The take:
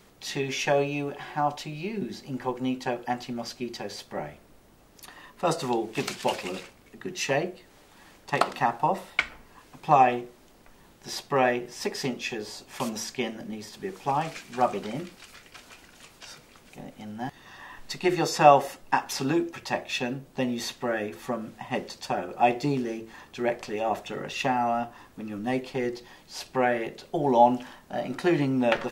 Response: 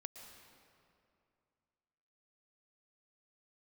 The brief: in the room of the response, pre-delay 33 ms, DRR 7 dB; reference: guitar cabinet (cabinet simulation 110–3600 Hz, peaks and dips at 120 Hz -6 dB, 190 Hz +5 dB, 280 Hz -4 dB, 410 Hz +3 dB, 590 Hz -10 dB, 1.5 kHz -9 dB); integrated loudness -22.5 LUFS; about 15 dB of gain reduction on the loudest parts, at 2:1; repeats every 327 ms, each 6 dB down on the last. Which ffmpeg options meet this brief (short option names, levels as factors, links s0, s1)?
-filter_complex "[0:a]acompressor=threshold=0.01:ratio=2,aecho=1:1:327|654|981|1308|1635|1962:0.501|0.251|0.125|0.0626|0.0313|0.0157,asplit=2[s0][s1];[1:a]atrim=start_sample=2205,adelay=33[s2];[s1][s2]afir=irnorm=-1:irlink=0,volume=0.75[s3];[s0][s3]amix=inputs=2:normalize=0,highpass=110,equalizer=f=120:t=q:w=4:g=-6,equalizer=f=190:t=q:w=4:g=5,equalizer=f=280:t=q:w=4:g=-4,equalizer=f=410:t=q:w=4:g=3,equalizer=f=590:t=q:w=4:g=-10,equalizer=f=1500:t=q:w=4:g=-9,lowpass=f=3600:w=0.5412,lowpass=f=3600:w=1.3066,volume=6.31"